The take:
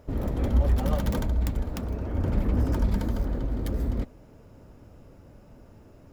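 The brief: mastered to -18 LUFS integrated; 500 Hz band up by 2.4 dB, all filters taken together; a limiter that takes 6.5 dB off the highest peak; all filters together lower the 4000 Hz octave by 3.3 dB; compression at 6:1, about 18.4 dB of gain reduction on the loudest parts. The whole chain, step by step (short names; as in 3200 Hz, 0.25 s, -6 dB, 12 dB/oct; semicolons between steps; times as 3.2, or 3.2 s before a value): bell 500 Hz +3 dB; bell 4000 Hz -4.5 dB; compressor 6:1, threshold -39 dBFS; gain +28 dB; limiter -7 dBFS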